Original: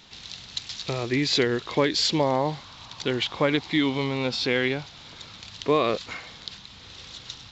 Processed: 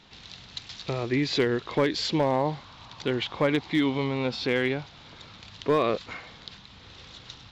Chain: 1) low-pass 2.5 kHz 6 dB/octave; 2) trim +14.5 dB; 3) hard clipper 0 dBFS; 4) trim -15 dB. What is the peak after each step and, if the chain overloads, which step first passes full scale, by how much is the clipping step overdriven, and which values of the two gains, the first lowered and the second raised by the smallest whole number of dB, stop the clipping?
-9.0 dBFS, +5.5 dBFS, 0.0 dBFS, -15.0 dBFS; step 2, 5.5 dB; step 2 +8.5 dB, step 4 -9 dB

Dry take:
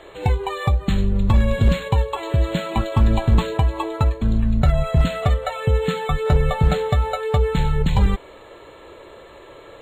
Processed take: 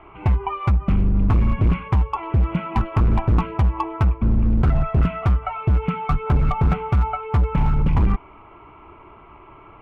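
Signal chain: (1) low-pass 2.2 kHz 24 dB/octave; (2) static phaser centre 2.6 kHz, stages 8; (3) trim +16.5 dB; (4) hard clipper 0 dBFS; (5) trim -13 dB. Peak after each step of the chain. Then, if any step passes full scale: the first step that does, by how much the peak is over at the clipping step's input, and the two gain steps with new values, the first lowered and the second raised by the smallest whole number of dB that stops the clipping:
-7.5 dBFS, -7.5 dBFS, +9.0 dBFS, 0.0 dBFS, -13.0 dBFS; step 3, 9.0 dB; step 3 +7.5 dB, step 5 -4 dB

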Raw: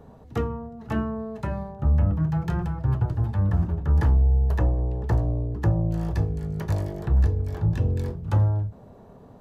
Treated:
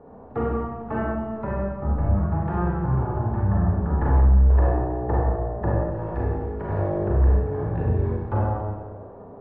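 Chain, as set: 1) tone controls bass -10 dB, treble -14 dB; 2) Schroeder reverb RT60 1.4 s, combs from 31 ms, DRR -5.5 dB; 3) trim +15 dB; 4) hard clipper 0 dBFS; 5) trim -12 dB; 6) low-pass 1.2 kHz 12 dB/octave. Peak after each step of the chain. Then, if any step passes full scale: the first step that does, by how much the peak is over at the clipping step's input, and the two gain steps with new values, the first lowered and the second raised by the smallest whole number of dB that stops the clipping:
-16.5 dBFS, -10.5 dBFS, +4.5 dBFS, 0.0 dBFS, -12.0 dBFS, -12.0 dBFS; step 3, 4.5 dB; step 3 +10 dB, step 5 -7 dB

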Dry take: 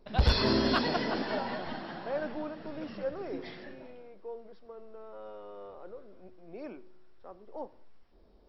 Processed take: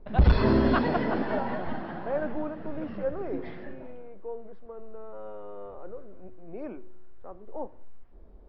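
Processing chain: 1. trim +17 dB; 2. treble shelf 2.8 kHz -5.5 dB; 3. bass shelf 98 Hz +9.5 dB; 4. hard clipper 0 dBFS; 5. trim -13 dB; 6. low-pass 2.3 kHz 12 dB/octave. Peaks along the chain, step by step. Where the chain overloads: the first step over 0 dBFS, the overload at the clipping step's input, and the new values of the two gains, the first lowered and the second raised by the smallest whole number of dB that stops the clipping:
+0.5 dBFS, +0.5 dBFS, +8.5 dBFS, 0.0 dBFS, -13.0 dBFS, -13.0 dBFS; step 1, 8.5 dB; step 1 +8 dB, step 5 -4 dB

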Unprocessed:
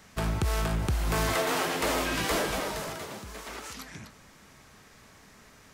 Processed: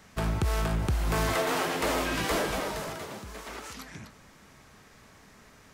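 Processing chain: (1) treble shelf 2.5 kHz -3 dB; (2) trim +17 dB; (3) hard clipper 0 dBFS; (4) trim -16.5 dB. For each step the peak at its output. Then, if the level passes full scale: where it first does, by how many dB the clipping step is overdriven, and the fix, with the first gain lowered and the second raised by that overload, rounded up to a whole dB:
-20.0 dBFS, -3.0 dBFS, -3.0 dBFS, -19.5 dBFS; nothing clips

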